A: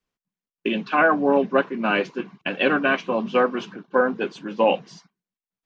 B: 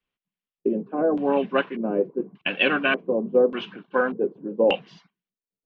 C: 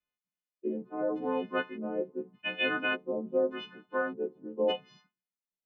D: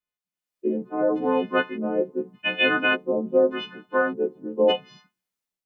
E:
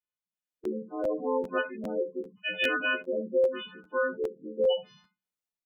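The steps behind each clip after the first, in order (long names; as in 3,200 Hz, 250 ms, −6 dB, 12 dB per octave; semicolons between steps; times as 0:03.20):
auto-filter low-pass square 0.85 Hz 460–3,000 Hz; level −3.5 dB
every partial snapped to a pitch grid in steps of 3 semitones; low-pass filter 1,800 Hz 6 dB per octave; level −9 dB
automatic gain control gain up to 11 dB; level −2 dB
ambience of single reflections 25 ms −11.5 dB, 59 ms −16.5 dB, 69 ms −13 dB; gate on every frequency bin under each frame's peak −15 dB strong; regular buffer underruns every 0.40 s, samples 512, repeat, from 0:00.63; level −7.5 dB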